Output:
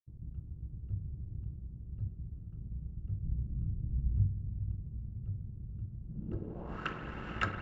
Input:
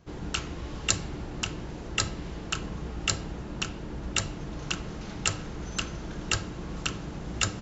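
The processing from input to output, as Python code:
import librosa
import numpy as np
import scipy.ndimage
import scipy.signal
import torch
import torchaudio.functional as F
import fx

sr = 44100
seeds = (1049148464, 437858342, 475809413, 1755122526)

y = fx.low_shelf(x, sr, hz=340.0, db=7.5, at=(3.23, 4.27))
y = fx.echo_diffused(y, sr, ms=465, feedback_pct=60, wet_db=-8.5)
y = np.sign(y) * np.maximum(np.abs(y) - 10.0 ** (-42.0 / 20.0), 0.0)
y = fx.filter_sweep_lowpass(y, sr, from_hz=110.0, to_hz=1700.0, start_s=6.02, end_s=6.88, q=1.8)
y = fx.rev_spring(y, sr, rt60_s=3.7, pass_ms=(51,), chirp_ms=30, drr_db=8.5)
y = y * 10.0 ** (-4.0 / 20.0)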